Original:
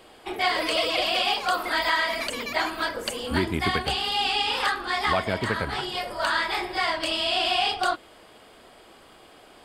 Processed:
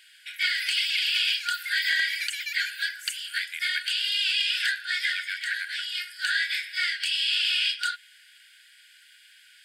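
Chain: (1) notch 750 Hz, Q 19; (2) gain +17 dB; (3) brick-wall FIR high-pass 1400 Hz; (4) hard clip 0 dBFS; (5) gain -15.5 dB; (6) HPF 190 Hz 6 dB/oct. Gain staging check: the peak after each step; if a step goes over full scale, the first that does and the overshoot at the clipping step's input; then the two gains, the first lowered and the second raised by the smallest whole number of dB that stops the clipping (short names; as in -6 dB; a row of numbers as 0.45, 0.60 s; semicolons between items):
-10.5, +6.5, +4.5, 0.0, -15.5, -15.0 dBFS; step 2, 4.5 dB; step 2 +12 dB, step 5 -10.5 dB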